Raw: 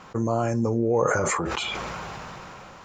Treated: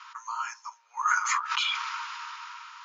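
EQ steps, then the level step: rippled Chebyshev high-pass 910 Hz, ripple 6 dB; rippled Chebyshev low-pass 6900 Hz, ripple 3 dB; +6.0 dB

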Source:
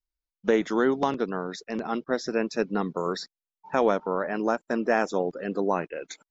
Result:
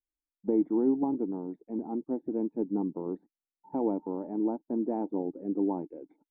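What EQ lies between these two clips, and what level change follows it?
vocal tract filter u; +5.0 dB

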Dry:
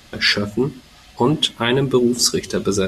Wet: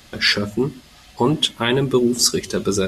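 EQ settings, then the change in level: high shelf 7900 Hz +3.5 dB; -1.0 dB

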